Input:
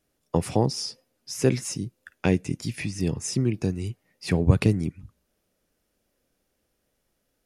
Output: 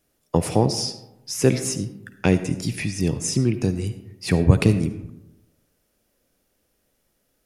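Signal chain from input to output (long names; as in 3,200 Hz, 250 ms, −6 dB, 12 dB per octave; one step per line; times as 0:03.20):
high-shelf EQ 9,000 Hz +5 dB
comb and all-pass reverb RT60 0.94 s, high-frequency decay 0.45×, pre-delay 30 ms, DRR 11 dB
level +3.5 dB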